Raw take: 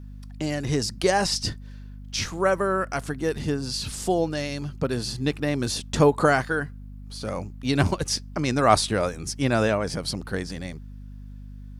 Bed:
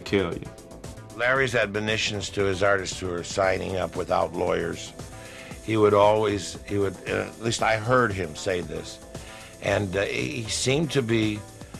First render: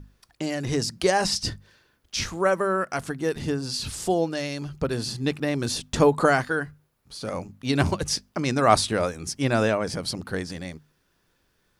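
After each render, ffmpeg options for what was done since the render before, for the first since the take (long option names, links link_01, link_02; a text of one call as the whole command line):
ffmpeg -i in.wav -af "bandreject=frequency=50:width_type=h:width=6,bandreject=frequency=100:width_type=h:width=6,bandreject=frequency=150:width_type=h:width=6,bandreject=frequency=200:width_type=h:width=6,bandreject=frequency=250:width_type=h:width=6" out.wav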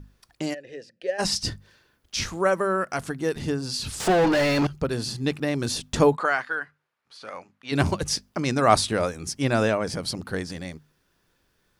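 ffmpeg -i in.wav -filter_complex "[0:a]asplit=3[link_01][link_02][link_03];[link_01]afade=type=out:start_time=0.53:duration=0.02[link_04];[link_02]asplit=3[link_05][link_06][link_07];[link_05]bandpass=frequency=530:width_type=q:width=8,volume=0dB[link_08];[link_06]bandpass=frequency=1840:width_type=q:width=8,volume=-6dB[link_09];[link_07]bandpass=frequency=2480:width_type=q:width=8,volume=-9dB[link_10];[link_08][link_09][link_10]amix=inputs=3:normalize=0,afade=type=in:start_time=0.53:duration=0.02,afade=type=out:start_time=1.18:duration=0.02[link_11];[link_03]afade=type=in:start_time=1.18:duration=0.02[link_12];[link_04][link_11][link_12]amix=inputs=3:normalize=0,asettb=1/sr,asplit=3[link_13][link_14][link_15];[link_13]atrim=end=4.004[link_16];[link_14]atrim=start=4:end=4.67,asetpts=PTS-STARTPTS,afade=type=in:duration=0.004:curve=qsin,afade=type=out:start_time=0.666:duration=0.004:curve=qsin,asplit=2[link_17][link_18];[link_18]highpass=frequency=720:poles=1,volume=35dB,asoftclip=type=tanh:threshold=-12.5dB[link_19];[link_17][link_19]amix=inputs=2:normalize=0,lowpass=frequency=1500:poles=1,volume=-6dB[link_20];[link_15]atrim=start=4.666[link_21];[link_16][link_20]acrossfade=duration=0.004:curve1=hsin:curve2=qsin[link_22];[link_22][link_21]acrossfade=duration=0.004:curve1=qsin:curve2=hsin,asplit=3[link_23][link_24][link_25];[link_23]afade=type=out:start_time=6.15:duration=0.02[link_26];[link_24]bandpass=frequency=1700:width_type=q:width=0.85,afade=type=in:start_time=6.15:duration=0.02,afade=type=out:start_time=7.71:duration=0.02[link_27];[link_25]afade=type=in:start_time=7.71:duration=0.02[link_28];[link_26][link_27][link_28]amix=inputs=3:normalize=0" out.wav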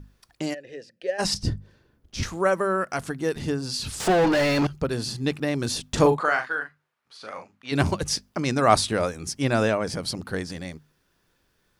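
ffmpeg -i in.wav -filter_complex "[0:a]asettb=1/sr,asplit=3[link_01][link_02][link_03];[link_01]atrim=end=1.344[link_04];[link_02]atrim=start=1.34:end=2.23,asetpts=PTS-STARTPTS,afade=type=in:duration=0.004:curve=qsin,afade=type=out:start_time=0.886:duration=0.004:curve=qsin,tiltshelf=frequency=690:gain=8.5[link_05];[link_03]atrim=start=2.226[link_06];[link_04][link_05]acrossfade=duration=0.004:curve1=hsin:curve2=qsin[link_07];[link_07][link_06]acrossfade=duration=0.004:curve1=qsin:curve2=hsin,asettb=1/sr,asplit=3[link_08][link_09][link_10];[link_08]atrim=end=5.894[link_11];[link_09]atrim=start=5.89:end=7.73,asetpts=PTS-STARTPTS,afade=type=in:duration=0.004:curve=qsin,afade=type=out:start_time=1.836:duration=0.004:curve=qsin,asplit=2[link_12][link_13];[link_13]adelay=40,volume=-7dB[link_14];[link_12][link_14]amix=inputs=2:normalize=0,atrim=end_sample=81144[link_15];[link_10]atrim=start=7.726[link_16];[link_11][link_15]acrossfade=duration=0.004:curve1=hsin:curve2=qsin[link_17];[link_17][link_16]acrossfade=duration=0.004:curve1=qsin:curve2=hsin" out.wav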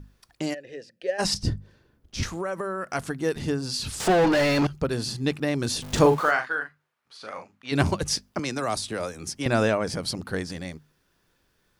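ffmpeg -i in.wav -filter_complex "[0:a]asettb=1/sr,asplit=3[link_01][link_02][link_03];[link_01]atrim=end=2.294[link_04];[link_02]atrim=start=2.29:end=2.95,asetpts=PTS-STARTPTS,afade=type=in:duration=0.004:curve=qsin,afade=type=out:start_time=0.656:duration=0.004:curve=qsin,acompressor=threshold=-25dB:ratio=12:attack=3.2:release=140:knee=1:detection=peak[link_05];[link_03]atrim=start=2.946[link_06];[link_04][link_05]acrossfade=duration=0.004:curve1=hsin:curve2=qsin[link_07];[link_07][link_06]acrossfade=duration=0.004:curve1=qsin:curve2=hsin,asettb=1/sr,asplit=3[link_08][link_09][link_10];[link_08]atrim=end=5.824[link_11];[link_09]atrim=start=5.82:end=6.31,asetpts=PTS-STARTPTS,afade=type=in:duration=0.004:curve=qsin,afade=type=out:start_time=0.486:duration=0.004:curve=qsin,aeval=exprs='val(0)+0.5*0.0211*sgn(val(0))':channel_layout=same[link_12];[link_10]atrim=start=6.306[link_13];[link_11][link_12]acrossfade=duration=0.004:curve1=hsin:curve2=qsin[link_14];[link_14][link_13]acrossfade=duration=0.004:curve1=qsin:curve2=hsin,asettb=1/sr,asplit=3[link_15][link_16][link_17];[link_15]atrim=end=8.394[link_18];[link_16]atrim=start=8.39:end=9.46,asetpts=PTS-STARTPTS,afade=type=in:duration=0.004:curve=qsin,afade=type=out:start_time=1.066:duration=0.004:curve=qsin,acrossover=split=220|630|3900[link_19][link_20][link_21][link_22];[link_19]acompressor=threshold=-42dB:ratio=3[link_23];[link_20]acompressor=threshold=-33dB:ratio=3[link_24];[link_21]acompressor=threshold=-33dB:ratio=3[link_25];[link_22]acompressor=threshold=-32dB:ratio=3[link_26];[link_23][link_24][link_25][link_26]amix=inputs=4:normalize=0[link_27];[link_17]atrim=start=9.456[link_28];[link_18][link_27]acrossfade=duration=0.004:curve1=hsin:curve2=qsin[link_29];[link_29][link_28]acrossfade=duration=0.004:curve1=qsin:curve2=hsin" out.wav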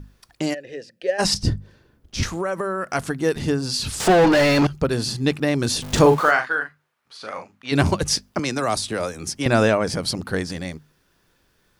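ffmpeg -i in.wav -af "volume=5dB,alimiter=limit=-3dB:level=0:latency=1" out.wav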